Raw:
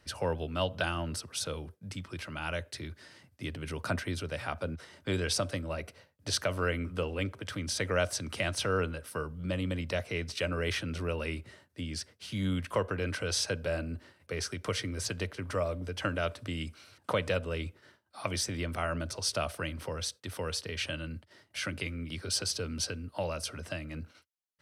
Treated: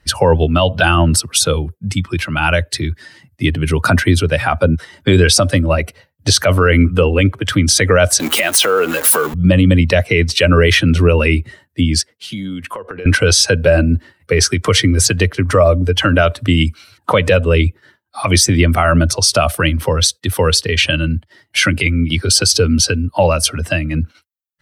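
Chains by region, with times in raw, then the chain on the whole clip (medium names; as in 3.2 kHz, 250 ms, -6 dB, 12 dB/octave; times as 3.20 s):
8.20–9.34 s: jump at every zero crossing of -33.5 dBFS + high-pass 290 Hz + compression 3:1, threshold -33 dBFS
12.01–13.06 s: high-pass 470 Hz 6 dB/octave + tilt shelf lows +3.5 dB, about 640 Hz + compression 12:1, threshold -40 dBFS
whole clip: expander on every frequency bin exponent 1.5; treble shelf 9.6 kHz +5 dB; loudness maximiser +28 dB; trim -1 dB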